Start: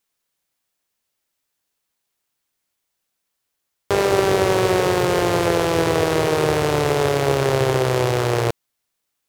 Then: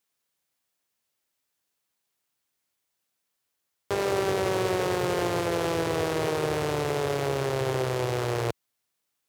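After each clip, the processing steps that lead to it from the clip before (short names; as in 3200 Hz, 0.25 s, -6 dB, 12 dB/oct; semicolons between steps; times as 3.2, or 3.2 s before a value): HPF 66 Hz; limiter -12.5 dBFS, peak gain reduction 8.5 dB; gain -3 dB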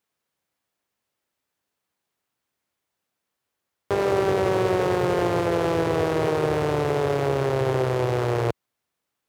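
high shelf 2700 Hz -10 dB; gain +5 dB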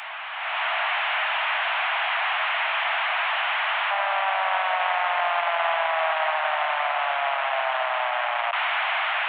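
delta modulation 16 kbps, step -21.5 dBFS; steep high-pass 640 Hz 96 dB/oct; AGC gain up to 11 dB; gain -6 dB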